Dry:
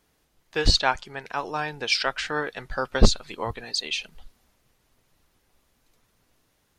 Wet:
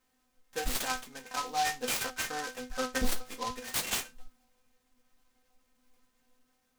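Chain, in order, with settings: 3.59–4.00 s: tilt shelf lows -5.5 dB, about 1.1 kHz; peak limiter -14 dBFS, peak gain reduction 10.5 dB; inharmonic resonator 250 Hz, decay 0.24 s, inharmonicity 0.002; delay time shaken by noise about 4 kHz, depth 0.069 ms; trim +7.5 dB

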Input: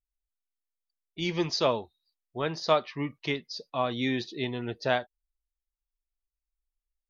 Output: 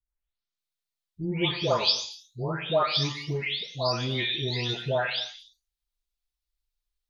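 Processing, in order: delay that grows with frequency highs late, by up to 580 ms; graphic EQ 125/250/4000 Hz +8/-6/+9 dB; gated-style reverb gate 300 ms falling, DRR 9 dB; trim +2 dB

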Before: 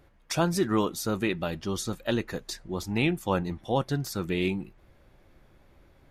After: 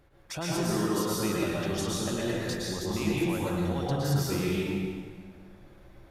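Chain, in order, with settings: peak limiter -24 dBFS, peak gain reduction 11.5 dB; plate-style reverb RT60 1.8 s, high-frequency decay 0.8×, pre-delay 100 ms, DRR -6 dB; trim -2.5 dB

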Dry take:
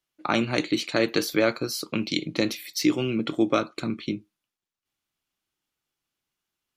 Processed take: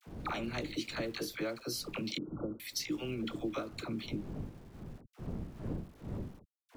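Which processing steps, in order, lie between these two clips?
wind noise 210 Hz -40 dBFS; gate with hold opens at -43 dBFS; compression 5:1, threshold -35 dBFS, peak gain reduction 17 dB; small samples zeroed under -54.5 dBFS; phase dispersion lows, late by 64 ms, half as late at 700 Hz; 2.18–2.60 s: brick-wall FIR low-pass 1.5 kHz

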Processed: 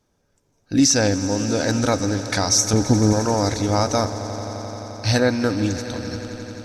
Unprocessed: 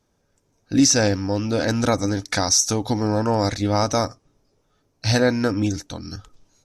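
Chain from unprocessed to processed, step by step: 2.73–3.13 s: tilt shelf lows +8.5 dB, about 670 Hz; on a send: echo with a slow build-up 87 ms, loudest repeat 5, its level -17.5 dB

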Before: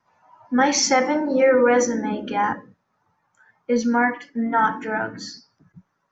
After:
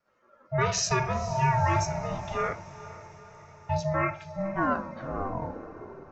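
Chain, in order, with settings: tape stop on the ending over 1.91 s; ring modulator 390 Hz; echo that smears into a reverb 486 ms, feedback 55%, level -16 dB; trim -5 dB

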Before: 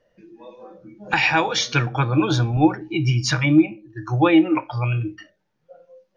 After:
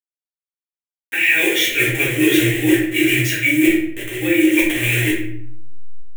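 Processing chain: send-on-delta sampling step -24.5 dBFS; tilt EQ +3 dB/octave; random-step tremolo; in parallel at -0.5 dB: gain riding within 4 dB; on the sum: FFT filter 130 Hz 0 dB, 190 Hz -7 dB, 350 Hz +12 dB, 560 Hz +1 dB, 900 Hz -15 dB, 1.3 kHz -11 dB, 1.9 kHz +15 dB, 3.3 kHz +6 dB, 4.7 kHz -16 dB, 7.3 kHz +2 dB; reverse; compression 5:1, threshold -20 dBFS, peak gain reduction 19 dB; reverse; simulated room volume 110 m³, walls mixed, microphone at 1.7 m; trim -1 dB

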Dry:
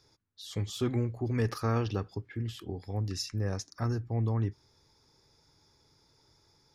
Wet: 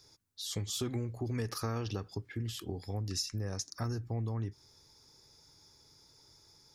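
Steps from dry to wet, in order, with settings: tone controls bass 0 dB, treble +9 dB; compression 6:1, threshold -32 dBFS, peak gain reduction 8.5 dB

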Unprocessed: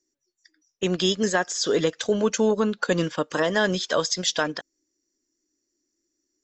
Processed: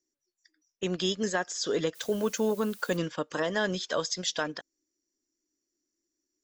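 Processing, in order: 1.94–2.96 s: added noise blue -44 dBFS; trim -6.5 dB

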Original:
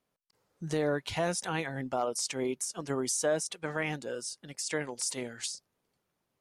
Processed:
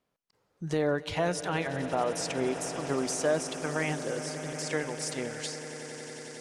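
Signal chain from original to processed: treble shelf 6.5 kHz -9 dB; on a send: echo with a slow build-up 91 ms, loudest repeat 8, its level -17 dB; on the sum: trim +2 dB

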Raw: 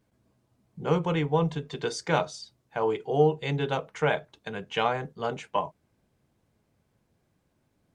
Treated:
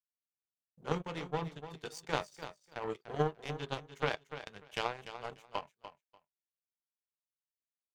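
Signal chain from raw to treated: treble shelf 5.9 kHz +10 dB; in parallel at -1.5 dB: compression, threshold -36 dBFS, peak gain reduction 18.5 dB; on the sum: flange 0.59 Hz, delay 4.2 ms, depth 8.5 ms, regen +71%; power-law waveshaper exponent 2; on a send: feedback delay 294 ms, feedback 17%, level -11.5 dB

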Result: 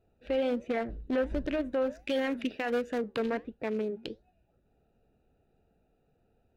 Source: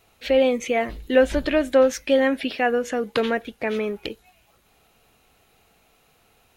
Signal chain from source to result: local Wiener filter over 41 samples; 1.99–2.98 s: treble shelf 2.2 kHz +10 dB; 3.63–4.08 s: high-pass 100 Hz; peak limiter -17.5 dBFS, peak gain reduction 11 dB; flange 1.4 Hz, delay 3.1 ms, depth 4.5 ms, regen -88%; 0.66–1.27 s: loudspeaker Doppler distortion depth 0.26 ms

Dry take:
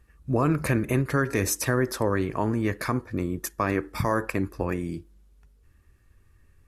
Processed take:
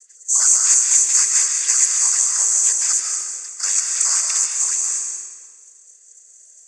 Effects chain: every band turned upside down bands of 500 Hz; 3.09–3.63 s: compression, threshold -34 dBFS, peak gain reduction 12 dB; careless resampling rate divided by 6×, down filtered, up zero stuff; noise-vocoded speech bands 16; high-pass 1.5 kHz 12 dB/octave; treble shelf 4.3 kHz +10.5 dB; algorithmic reverb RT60 1.6 s, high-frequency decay 0.9×, pre-delay 105 ms, DRR 1 dB; trim -3.5 dB

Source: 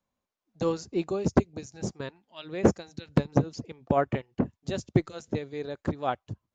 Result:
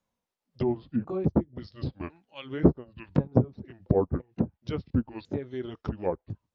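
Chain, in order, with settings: sawtooth pitch modulation -8 st, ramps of 1050 ms; low-pass that closes with the level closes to 850 Hz, closed at -26 dBFS; trim +1.5 dB

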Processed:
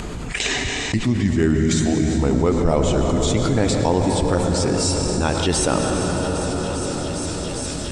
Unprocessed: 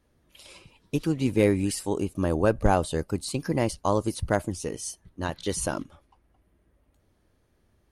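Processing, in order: pitch bend over the whole clip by -5.5 st ending unshifted; gate -51 dBFS, range -39 dB; low-pass 9.8 kHz 24 dB/octave; upward compressor, threshold -29 dBFS; feedback echo behind a high-pass 403 ms, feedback 82%, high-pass 2.9 kHz, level -18 dB; on a send at -5 dB: reverberation RT60 4.3 s, pre-delay 96 ms; on the sum: level flattener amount 70%; trim +1 dB

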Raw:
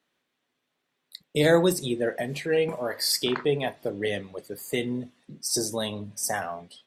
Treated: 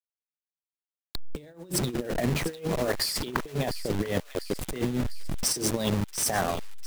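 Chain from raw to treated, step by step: send-on-delta sampling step -31 dBFS; bass shelf 500 Hz +6 dB; compressor with a negative ratio -28 dBFS, ratio -0.5; on a send: feedback echo behind a high-pass 699 ms, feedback 58%, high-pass 1.8 kHz, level -12 dB

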